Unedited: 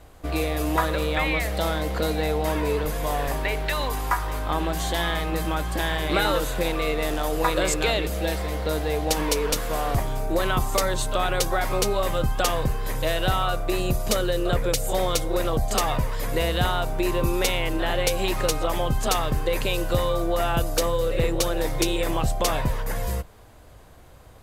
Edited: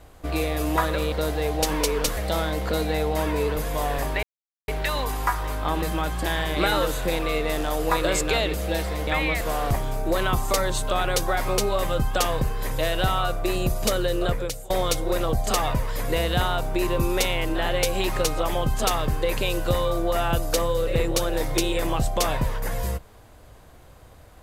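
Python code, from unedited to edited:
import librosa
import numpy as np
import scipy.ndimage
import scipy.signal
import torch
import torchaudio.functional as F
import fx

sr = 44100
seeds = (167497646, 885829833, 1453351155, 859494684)

y = fx.edit(x, sr, fx.swap(start_s=1.12, length_s=0.34, other_s=8.6, other_length_s=1.05),
    fx.insert_silence(at_s=3.52, length_s=0.45),
    fx.cut(start_s=4.66, length_s=0.69),
    fx.fade_out_to(start_s=14.47, length_s=0.47, floor_db=-21.0), tone=tone)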